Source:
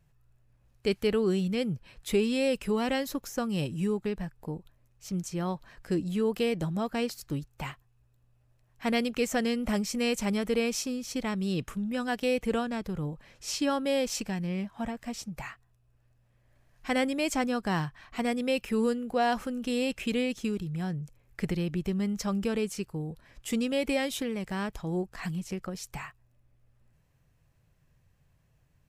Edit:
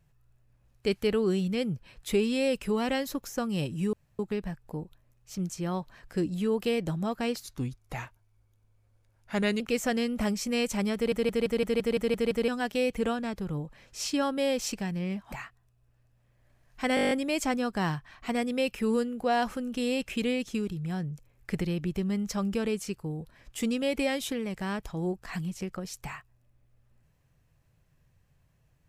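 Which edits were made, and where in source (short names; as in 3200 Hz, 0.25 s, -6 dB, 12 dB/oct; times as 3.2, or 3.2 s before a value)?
3.93 insert room tone 0.26 s
7.17–9.08 speed 88%
10.43 stutter in place 0.17 s, 9 plays
14.8–15.38 cut
17.01 stutter 0.02 s, 9 plays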